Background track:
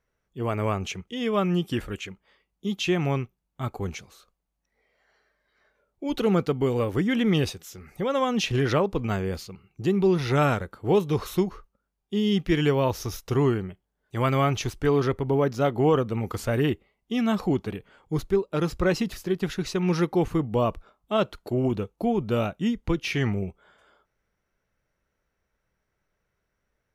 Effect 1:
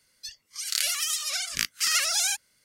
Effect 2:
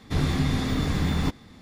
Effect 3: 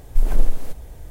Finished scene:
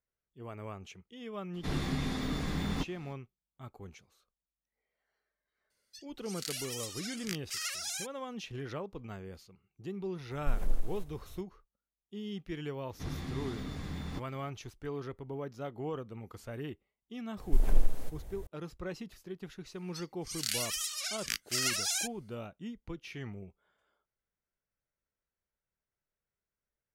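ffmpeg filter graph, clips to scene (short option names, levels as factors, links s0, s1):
-filter_complex "[2:a]asplit=2[s0][s1];[1:a]asplit=2[s2][s3];[3:a]asplit=2[s4][s5];[0:a]volume=0.141[s6];[s0]equalizer=f=97:w=3.1:g=-14,atrim=end=1.61,asetpts=PTS-STARTPTS,volume=0.422,afade=t=in:d=0.02,afade=t=out:st=1.59:d=0.02,adelay=1530[s7];[s2]atrim=end=2.64,asetpts=PTS-STARTPTS,volume=0.224,afade=t=in:d=0.004:c=hsin,afade=t=out:st=2.636:d=0.004:c=hsin,adelay=5700[s8];[s4]atrim=end=1.1,asetpts=PTS-STARTPTS,volume=0.211,afade=t=in:d=0.004:c=hsin,afade=t=out:st=1.096:d=0.004:c=hsin,adelay=10310[s9];[s1]atrim=end=1.61,asetpts=PTS-STARTPTS,volume=0.178,afade=t=in:d=0.004:c=hsin,afade=t=out:st=1.606:d=0.004:c=hsin,adelay=12890[s10];[s5]atrim=end=1.1,asetpts=PTS-STARTPTS,volume=0.398,afade=t=in:d=0.004:c=hsin,afade=t=out:st=1.096:d=0.004:c=hsin,adelay=17370[s11];[s3]atrim=end=2.64,asetpts=PTS-STARTPTS,volume=0.422,afade=t=in:d=0.004:c=hsin,afade=t=out:st=2.636:d=0.004:c=hsin,adelay=19710[s12];[s6][s7][s8][s9][s10][s11][s12]amix=inputs=7:normalize=0"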